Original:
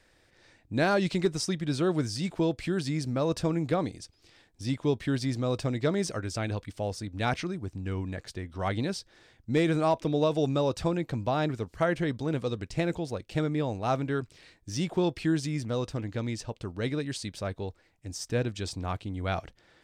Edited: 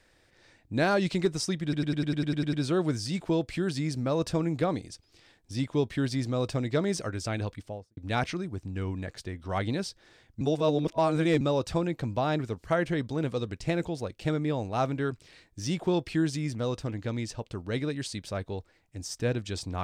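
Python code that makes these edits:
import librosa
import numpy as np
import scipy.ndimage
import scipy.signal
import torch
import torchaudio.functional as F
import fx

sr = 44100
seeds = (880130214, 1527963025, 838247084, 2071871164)

y = fx.studio_fade_out(x, sr, start_s=6.59, length_s=0.48)
y = fx.edit(y, sr, fx.stutter(start_s=1.63, slice_s=0.1, count=10),
    fx.reverse_span(start_s=9.51, length_s=1.0), tone=tone)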